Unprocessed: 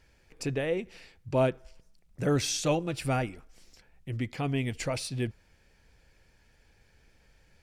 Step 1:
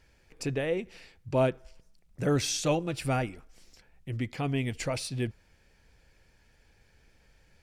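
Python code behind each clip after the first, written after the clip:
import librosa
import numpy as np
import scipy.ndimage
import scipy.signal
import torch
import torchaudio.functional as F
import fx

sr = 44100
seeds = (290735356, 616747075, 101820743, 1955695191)

y = x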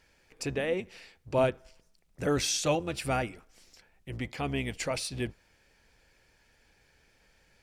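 y = fx.octave_divider(x, sr, octaves=1, level_db=-5.0)
y = fx.low_shelf(y, sr, hz=240.0, db=-9.5)
y = y * librosa.db_to_amplitude(1.5)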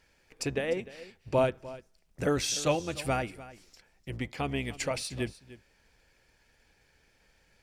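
y = fx.transient(x, sr, attack_db=4, sustain_db=0)
y = y + 10.0 ** (-17.5 / 20.0) * np.pad(y, (int(300 * sr / 1000.0), 0))[:len(y)]
y = y * librosa.db_to_amplitude(-1.5)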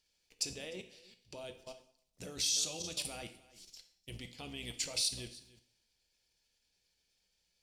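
y = fx.level_steps(x, sr, step_db=20)
y = fx.high_shelf_res(y, sr, hz=2600.0, db=12.0, q=1.5)
y = fx.rev_double_slope(y, sr, seeds[0], early_s=0.56, late_s=1.7, knee_db=-28, drr_db=7.0)
y = y * librosa.db_to_amplitude(-6.0)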